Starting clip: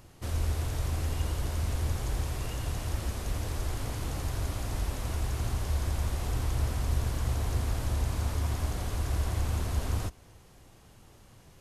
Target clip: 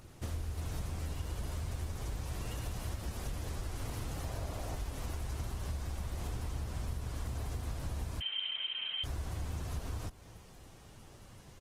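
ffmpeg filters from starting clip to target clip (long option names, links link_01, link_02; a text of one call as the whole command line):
ffmpeg -i in.wav -filter_complex "[0:a]asettb=1/sr,asplit=3[link_01][link_02][link_03];[link_01]atrim=end=4.244[link_04];[link_02]atrim=start=4.24:end=4.76,asetpts=PTS-STARTPTS,afade=type=in:duration=0.004:curve=qsin,afade=type=out:start_time=0.516:duration=0.004:curve=qsin,equalizer=frequency=630:width=1.5:gain=7.5[link_05];[link_03]atrim=start=4.756[link_06];[link_04][link_05]acrossfade=duration=0.004:curve1=hsin:curve2=qsin[link_07];[link_07][link_06]acrossfade=duration=0.004:curve1=qsin:curve2=hsin,acompressor=threshold=-36dB:ratio=6,asplit=2[link_08][link_09];[link_09]adelay=72,lowpass=frequency=1000:poles=1,volume=-21dB,asplit=2[link_10][link_11];[link_11]adelay=72,lowpass=frequency=1000:poles=1,volume=0.34,asplit=2[link_12][link_13];[link_13]adelay=72,lowpass=frequency=1000:poles=1,volume=0.34[link_14];[link_08][link_10][link_12][link_14]amix=inputs=4:normalize=0,asettb=1/sr,asplit=3[link_15][link_16][link_17];[link_15]atrim=end=8.204[link_18];[link_16]atrim=start=8.2:end=9.04,asetpts=PTS-STARTPTS,afade=type=in:duration=0.004:curve=qsin,afade=type=out:start_time=0.836:duration=0.004:curve=qsin,lowpass=frequency=2700:width_type=q:width=0.5098,lowpass=frequency=2700:width_type=q:width=0.6013,lowpass=frequency=2700:width_type=q:width=0.9,lowpass=frequency=2700:width_type=q:width=2.563,afreqshift=-3200[link_19];[link_17]atrim=start=9.036[link_20];[link_18][link_19]acrossfade=duration=0.004:curve1=hsin:curve2=qsin[link_21];[link_21][link_20]acrossfade=duration=0.004:curve1=qsin:curve2=hsin,volume=1dB" -ar 48000 -c:a libopus -b:a 16k out.opus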